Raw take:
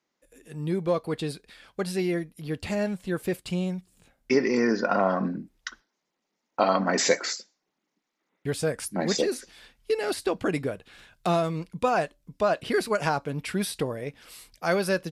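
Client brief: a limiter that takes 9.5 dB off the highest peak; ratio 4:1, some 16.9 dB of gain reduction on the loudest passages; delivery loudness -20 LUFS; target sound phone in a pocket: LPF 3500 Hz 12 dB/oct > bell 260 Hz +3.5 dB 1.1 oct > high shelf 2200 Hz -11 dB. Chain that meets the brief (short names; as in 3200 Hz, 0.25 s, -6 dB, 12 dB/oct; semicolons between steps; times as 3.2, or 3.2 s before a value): compressor 4:1, threshold -38 dBFS; limiter -30.5 dBFS; LPF 3500 Hz 12 dB/oct; bell 260 Hz +3.5 dB 1.1 oct; high shelf 2200 Hz -11 dB; gain +21.5 dB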